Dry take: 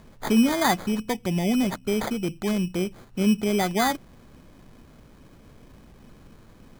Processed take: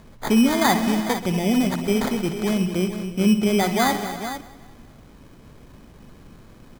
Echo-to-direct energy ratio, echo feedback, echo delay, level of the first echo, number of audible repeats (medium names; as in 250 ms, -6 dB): -6.0 dB, no regular repeats, 60 ms, -11.5 dB, 8